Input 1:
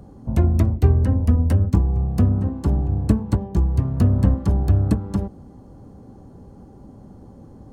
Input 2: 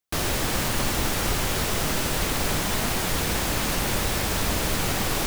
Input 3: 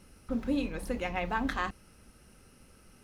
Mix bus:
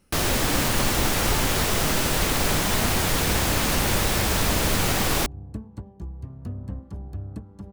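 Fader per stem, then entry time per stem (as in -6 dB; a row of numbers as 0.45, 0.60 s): -17.0, +2.5, -6.0 dB; 2.45, 0.00, 0.00 s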